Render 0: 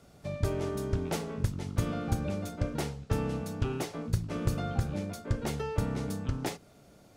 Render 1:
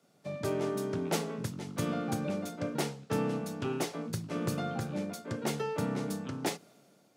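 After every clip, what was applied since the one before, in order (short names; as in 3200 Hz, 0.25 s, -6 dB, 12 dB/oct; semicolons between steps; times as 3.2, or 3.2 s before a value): HPF 150 Hz 24 dB/oct; three-band expander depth 40%; gain +1.5 dB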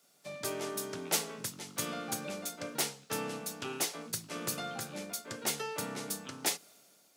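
tilt +3.5 dB/oct; gain -2 dB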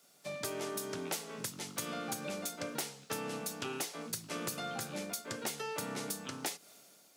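compressor 10:1, threshold -37 dBFS, peak gain reduction 13 dB; gain +2.5 dB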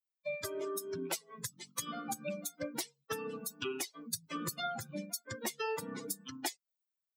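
per-bin expansion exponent 3; gain +7 dB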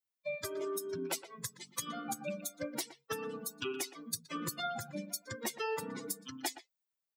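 speakerphone echo 0.12 s, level -12 dB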